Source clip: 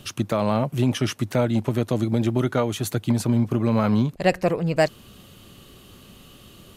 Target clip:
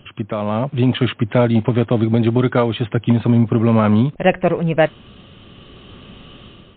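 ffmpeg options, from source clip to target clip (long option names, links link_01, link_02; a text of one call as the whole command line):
ffmpeg -i in.wav -af "dynaudnorm=framelen=460:gausssize=3:maxgain=9dB" -ar 8000 -c:a libmp3lame -b:a 32k out.mp3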